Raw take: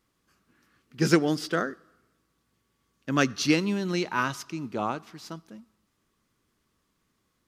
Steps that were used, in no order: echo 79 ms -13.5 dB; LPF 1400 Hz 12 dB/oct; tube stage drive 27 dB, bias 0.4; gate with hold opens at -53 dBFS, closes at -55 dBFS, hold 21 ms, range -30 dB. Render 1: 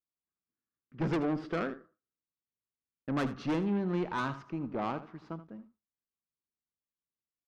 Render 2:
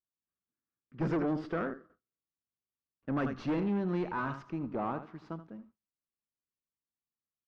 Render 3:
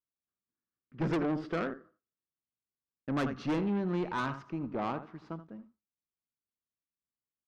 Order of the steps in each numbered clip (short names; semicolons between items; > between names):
LPF > tube stage > gate with hold > echo; echo > tube stage > gate with hold > LPF; LPF > gate with hold > echo > tube stage